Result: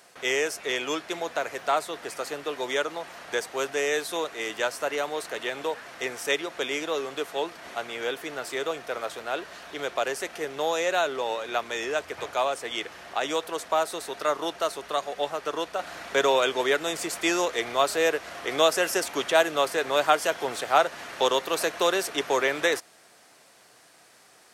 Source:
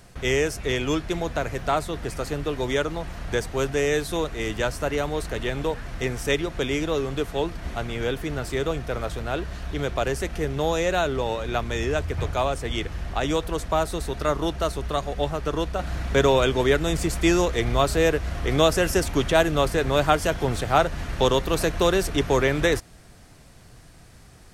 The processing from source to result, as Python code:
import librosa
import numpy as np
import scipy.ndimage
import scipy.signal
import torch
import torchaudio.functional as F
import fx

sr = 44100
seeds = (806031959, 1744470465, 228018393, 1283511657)

y = scipy.signal.sosfilt(scipy.signal.butter(2, 490.0, 'highpass', fs=sr, output='sos'), x)